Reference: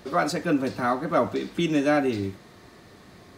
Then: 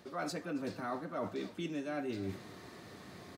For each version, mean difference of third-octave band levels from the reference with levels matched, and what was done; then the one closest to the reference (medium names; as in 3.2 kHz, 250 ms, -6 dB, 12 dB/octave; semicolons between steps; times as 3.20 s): 6.0 dB: high-pass 85 Hz; reverse; compression 6:1, threshold -35 dBFS, peak gain reduction 17 dB; reverse; echo from a far wall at 47 m, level -17 dB; trim -1.5 dB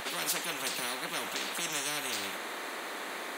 16.0 dB: high-pass 380 Hz 24 dB/octave; peaking EQ 5.1 kHz -12 dB 0.53 oct; spectrum-flattening compressor 10:1; trim -7 dB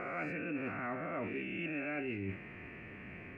10.0 dB: reverse spectral sustain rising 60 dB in 1.05 s; FFT filter 240 Hz 0 dB, 1.1 kHz -7 dB, 2.6 kHz +12 dB, 3.7 kHz -28 dB; reverse; compression 10:1, threshold -34 dBFS, peak gain reduction 16.5 dB; reverse; trim -2 dB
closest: first